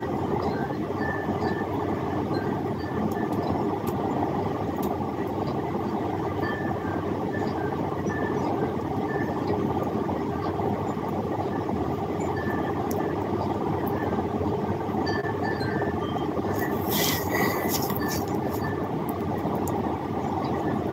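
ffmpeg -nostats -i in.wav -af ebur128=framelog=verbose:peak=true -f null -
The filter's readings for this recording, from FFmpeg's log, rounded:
Integrated loudness:
  I:         -27.5 LUFS
  Threshold: -37.5 LUFS
Loudness range:
  LRA:         2.0 LU
  Threshold: -47.5 LUFS
  LRA low:   -28.2 LUFS
  LRA high:  -26.1 LUFS
True peak:
  Peak:      -10.5 dBFS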